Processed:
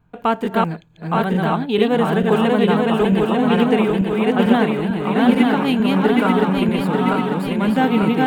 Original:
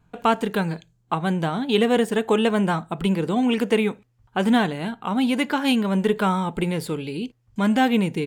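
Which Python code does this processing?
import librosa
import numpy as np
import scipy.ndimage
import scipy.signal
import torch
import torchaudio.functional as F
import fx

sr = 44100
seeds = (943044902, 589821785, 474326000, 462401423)

y = fx.reverse_delay_fb(x, sr, ms=446, feedback_pct=75, wet_db=-1)
y = fx.peak_eq(y, sr, hz=7300.0, db=-10.5, octaves=1.8)
y = y * librosa.db_to_amplitude(1.5)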